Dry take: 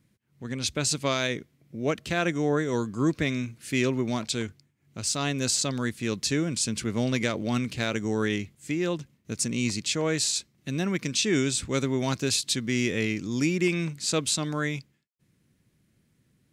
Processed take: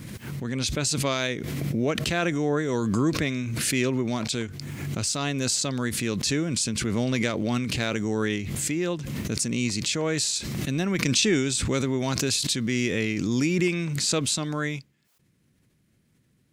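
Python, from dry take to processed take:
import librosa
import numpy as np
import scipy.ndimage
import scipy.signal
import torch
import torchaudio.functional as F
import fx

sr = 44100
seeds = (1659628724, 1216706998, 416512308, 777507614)

y = fx.transient(x, sr, attack_db=5, sustain_db=-2, at=(10.74, 11.59))
y = fx.pre_swell(y, sr, db_per_s=22.0)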